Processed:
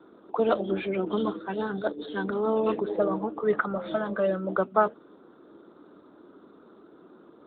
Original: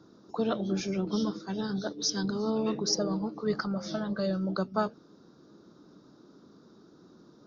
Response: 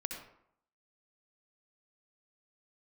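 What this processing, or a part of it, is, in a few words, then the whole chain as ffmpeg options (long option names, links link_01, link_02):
telephone: -af "highpass=360,lowpass=3600,volume=8.5dB" -ar 8000 -c:a libopencore_amrnb -b:a 12200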